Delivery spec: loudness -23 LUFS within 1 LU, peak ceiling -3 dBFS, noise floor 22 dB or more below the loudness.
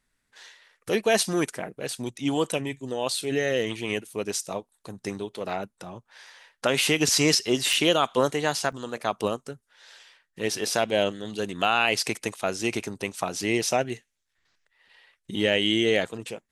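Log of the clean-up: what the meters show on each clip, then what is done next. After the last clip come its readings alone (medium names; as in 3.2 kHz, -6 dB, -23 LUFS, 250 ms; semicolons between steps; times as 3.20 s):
dropouts 2; longest dropout 4.4 ms; loudness -26.0 LUFS; peak level -7.0 dBFS; loudness target -23.0 LUFS
-> interpolate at 7.73/8.72 s, 4.4 ms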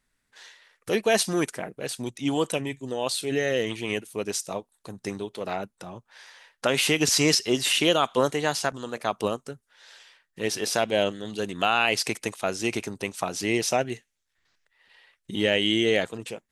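dropouts 0; loudness -26.0 LUFS; peak level -7.0 dBFS; loudness target -23.0 LUFS
-> trim +3 dB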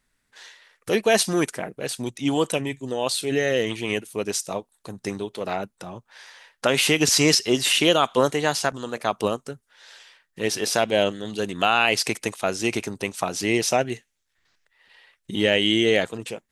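loudness -23.0 LUFS; peak level -4.0 dBFS; noise floor -74 dBFS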